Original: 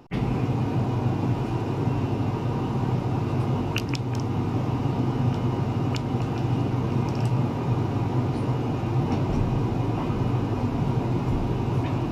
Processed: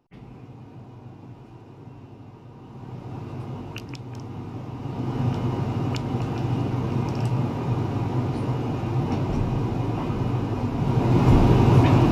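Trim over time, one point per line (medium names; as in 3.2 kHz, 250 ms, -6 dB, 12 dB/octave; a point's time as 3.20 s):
2.55 s -18 dB
3.15 s -9 dB
4.74 s -9 dB
5.21 s -0.5 dB
10.76 s -0.5 dB
11.30 s +9 dB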